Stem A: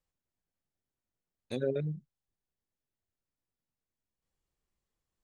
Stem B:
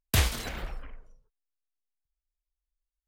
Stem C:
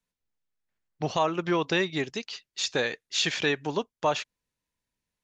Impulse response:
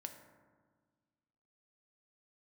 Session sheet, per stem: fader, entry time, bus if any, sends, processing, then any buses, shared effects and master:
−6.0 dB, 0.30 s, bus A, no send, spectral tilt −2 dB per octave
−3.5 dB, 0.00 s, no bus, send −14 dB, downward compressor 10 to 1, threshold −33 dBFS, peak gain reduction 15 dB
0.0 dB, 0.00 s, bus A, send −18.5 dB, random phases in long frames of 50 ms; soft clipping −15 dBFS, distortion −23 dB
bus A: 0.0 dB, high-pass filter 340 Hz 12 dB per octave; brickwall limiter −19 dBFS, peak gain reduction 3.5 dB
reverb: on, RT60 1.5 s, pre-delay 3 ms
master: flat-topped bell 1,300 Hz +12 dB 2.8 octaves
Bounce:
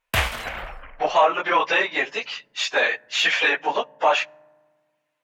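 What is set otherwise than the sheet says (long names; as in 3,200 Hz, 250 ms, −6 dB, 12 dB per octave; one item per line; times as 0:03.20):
stem A: muted
stem B: missing downward compressor 10 to 1, threshold −33 dBFS, peak gain reduction 15 dB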